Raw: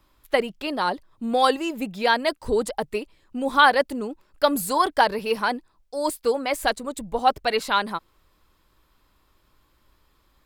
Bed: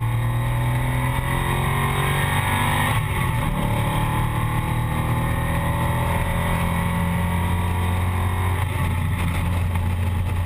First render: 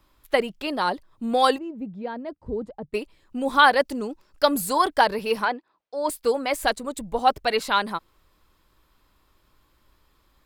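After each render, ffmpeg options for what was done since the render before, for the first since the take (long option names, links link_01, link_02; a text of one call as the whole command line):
ffmpeg -i in.wav -filter_complex "[0:a]asettb=1/sr,asplit=3[link_01][link_02][link_03];[link_01]atrim=end=1.584[link_04];[link_02]atrim=start=1.58:end=2.94,asetpts=PTS-STARTPTS,afade=type=in:duration=0.004:curve=qsin,afade=type=out:start_time=1.356:duration=0.004:curve=qsin,bandpass=frequency=120:width_type=q:width=0.66[link_05];[link_03]atrim=start=2.936[link_06];[link_04][link_05]acrossfade=duration=0.004:curve1=hsin:curve2=qsin[link_07];[link_07][link_06]acrossfade=duration=0.004:curve1=qsin:curve2=hsin,asettb=1/sr,asplit=3[link_08][link_09][link_10];[link_08]atrim=end=3.854[link_11];[link_09]atrim=start=3.85:end=4.47,asetpts=PTS-STARTPTS,afade=type=in:duration=0.004:curve=qsin,afade=type=out:start_time=0.616:duration=0.004:curve=qsin,equalizer=frequency=5500:width=2.2:gain=7[link_12];[link_10]atrim=start=4.466[link_13];[link_11][link_12]acrossfade=duration=0.004:curve1=hsin:curve2=qsin[link_14];[link_14][link_13]acrossfade=duration=0.004:curve1=qsin:curve2=hsin,asplit=3[link_15][link_16][link_17];[link_15]afade=type=out:start_time=5.44:duration=0.02[link_18];[link_16]highpass=310,lowpass=3300,afade=type=in:start_time=5.44:duration=0.02,afade=type=out:start_time=6.08:duration=0.02[link_19];[link_17]afade=type=in:start_time=6.08:duration=0.02[link_20];[link_18][link_19][link_20]amix=inputs=3:normalize=0" out.wav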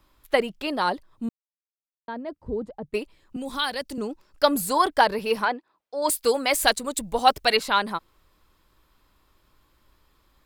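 ffmpeg -i in.wav -filter_complex "[0:a]asettb=1/sr,asplit=3[link_01][link_02][link_03];[link_01]atrim=end=3.364[link_04];[link_02]atrim=start=3.36:end=3.98,asetpts=PTS-STARTPTS,afade=type=in:duration=0.004:curve=qsin,afade=type=out:start_time=0.616:duration=0.004:curve=qsin,acrossover=split=190|3000[link_05][link_06][link_07];[link_06]acompressor=threshold=-39dB:ratio=2:attack=3.2:release=140:knee=2.83:detection=peak[link_08];[link_05][link_08][link_07]amix=inputs=3:normalize=0[link_09];[link_03]atrim=start=3.976[link_10];[link_04][link_09]acrossfade=duration=0.004:curve1=hsin:curve2=qsin[link_11];[link_11][link_10]acrossfade=duration=0.004:curve1=qsin:curve2=hsin,asettb=1/sr,asplit=3[link_12][link_13][link_14];[link_12]atrim=end=6.024[link_15];[link_13]atrim=start=6.02:end=7.57,asetpts=PTS-STARTPTS,afade=type=in:duration=0.004:curve=qsin,afade=type=out:start_time=1.546:duration=0.004:curve=qsin,highshelf=frequency=2300:gain=9.5[link_16];[link_14]atrim=start=7.566[link_17];[link_15][link_16]acrossfade=duration=0.004:curve1=hsin:curve2=qsin[link_18];[link_18][link_17]acrossfade=duration=0.004:curve1=qsin:curve2=hsin,asplit=3[link_19][link_20][link_21];[link_19]atrim=end=1.29,asetpts=PTS-STARTPTS,afade=type=out:start_time=1.286:duration=0.004:curve=hsin[link_22];[link_20]atrim=start=1.29:end=2.08,asetpts=PTS-STARTPTS,volume=0[link_23];[link_21]atrim=start=2.08,asetpts=PTS-STARTPTS,afade=type=in:duration=0.004:curve=hsin[link_24];[link_22][link_23][link_24]concat=n=3:v=0:a=1" out.wav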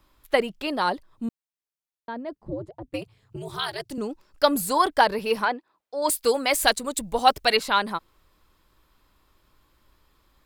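ffmpeg -i in.wav -filter_complex "[0:a]asettb=1/sr,asplit=3[link_01][link_02][link_03];[link_01]atrim=end=2.354[link_04];[link_02]atrim=start=2.35:end=3.91,asetpts=PTS-STARTPTS,afade=type=in:duration=0.004:curve=qsin,afade=type=out:start_time=1.556:duration=0.004:curve=qsin,aeval=exprs='val(0)*sin(2*PI*110*n/s)':channel_layout=same[link_05];[link_03]atrim=start=3.906[link_06];[link_04][link_05]acrossfade=duration=0.004:curve1=hsin:curve2=qsin[link_07];[link_07][link_06]acrossfade=duration=0.004:curve1=qsin:curve2=hsin" out.wav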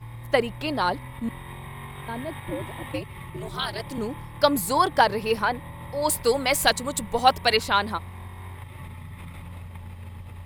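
ffmpeg -i in.wav -i bed.wav -filter_complex "[1:a]volume=-17.5dB[link_01];[0:a][link_01]amix=inputs=2:normalize=0" out.wav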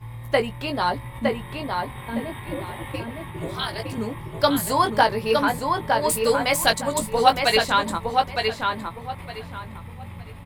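ffmpeg -i in.wav -filter_complex "[0:a]asplit=2[link_01][link_02];[link_02]adelay=18,volume=-6.5dB[link_03];[link_01][link_03]amix=inputs=2:normalize=0,asplit=2[link_04][link_05];[link_05]adelay=912,lowpass=frequency=4000:poles=1,volume=-3.5dB,asplit=2[link_06][link_07];[link_07]adelay=912,lowpass=frequency=4000:poles=1,volume=0.25,asplit=2[link_08][link_09];[link_09]adelay=912,lowpass=frequency=4000:poles=1,volume=0.25,asplit=2[link_10][link_11];[link_11]adelay=912,lowpass=frequency=4000:poles=1,volume=0.25[link_12];[link_04][link_06][link_08][link_10][link_12]amix=inputs=5:normalize=0" out.wav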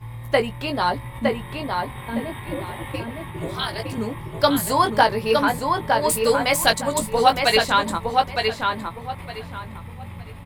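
ffmpeg -i in.wav -af "volume=1.5dB,alimiter=limit=-2dB:level=0:latency=1" out.wav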